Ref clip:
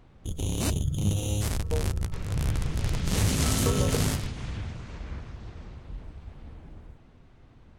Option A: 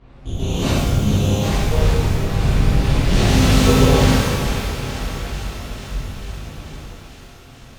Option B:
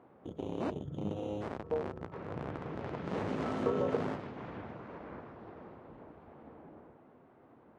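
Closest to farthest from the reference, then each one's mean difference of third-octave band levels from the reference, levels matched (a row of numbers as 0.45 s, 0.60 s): A, B; 6.5 dB, 8.5 dB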